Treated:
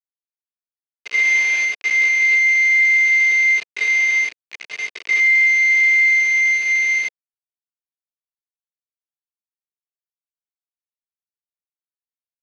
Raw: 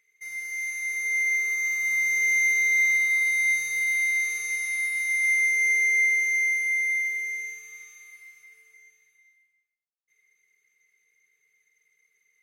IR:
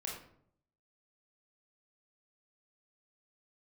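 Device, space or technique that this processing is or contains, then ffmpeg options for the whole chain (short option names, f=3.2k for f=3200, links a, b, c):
hand-held game console: -filter_complex "[0:a]asplit=3[a][b][c];[a]afade=t=out:st=1.23:d=0.02[d];[b]bass=f=250:g=8,treble=f=4k:g=14,afade=t=in:st=1.23:d=0.02,afade=t=out:st=1.64:d=0.02[e];[c]afade=t=in:st=1.64:d=0.02[f];[d][e][f]amix=inputs=3:normalize=0,aecho=1:1:109:0.112,acrusher=bits=3:mix=0:aa=0.000001,highpass=450,equalizer=f=490:t=q:w=4:g=-7,equalizer=f=840:t=q:w=4:g=-9,equalizer=f=1.3k:t=q:w=4:g=-9,equalizer=f=2.5k:t=q:w=4:g=7,equalizer=f=3.7k:t=q:w=4:g=-5,lowpass=f=4.3k:w=0.5412,lowpass=f=4.3k:w=1.3066,volume=5dB"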